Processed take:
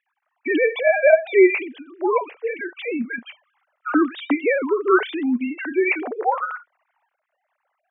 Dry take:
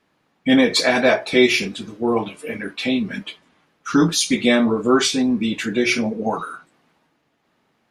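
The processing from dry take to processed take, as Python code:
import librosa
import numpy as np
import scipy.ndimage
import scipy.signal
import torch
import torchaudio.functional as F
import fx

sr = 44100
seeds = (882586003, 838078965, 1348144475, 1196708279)

y = fx.sine_speech(x, sr)
y = fx.bandpass_edges(y, sr, low_hz=420.0, high_hz=2300.0)
y = F.gain(torch.from_numpy(y), 2.5).numpy()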